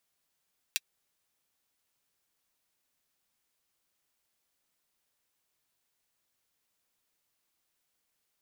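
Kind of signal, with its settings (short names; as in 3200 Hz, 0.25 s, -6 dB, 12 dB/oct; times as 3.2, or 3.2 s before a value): closed hi-hat, high-pass 2600 Hz, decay 0.04 s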